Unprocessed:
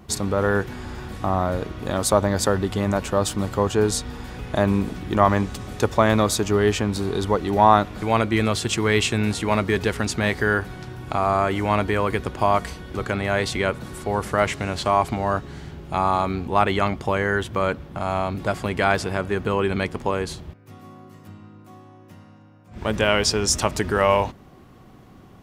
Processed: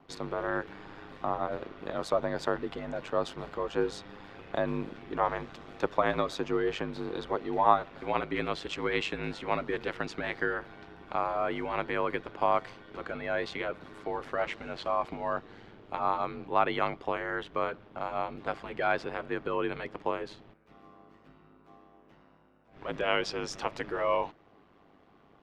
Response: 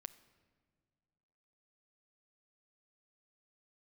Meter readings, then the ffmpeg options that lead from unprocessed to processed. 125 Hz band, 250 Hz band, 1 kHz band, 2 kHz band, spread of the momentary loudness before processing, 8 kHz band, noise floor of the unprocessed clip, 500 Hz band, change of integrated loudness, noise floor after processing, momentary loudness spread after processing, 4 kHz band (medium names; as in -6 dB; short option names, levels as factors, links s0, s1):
-18.5 dB, -13.0 dB, -8.5 dB, -9.5 dB, 9 LU, under -20 dB, -48 dBFS, -9.5 dB, -10.0 dB, -61 dBFS, 10 LU, -12.5 dB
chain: -filter_complex "[0:a]acrossover=split=260 4300:gain=0.224 1 0.0708[s0][s1][s2];[s0][s1][s2]amix=inputs=3:normalize=0,aeval=exprs='val(0)*sin(2*PI*50*n/s)':c=same,volume=0.531"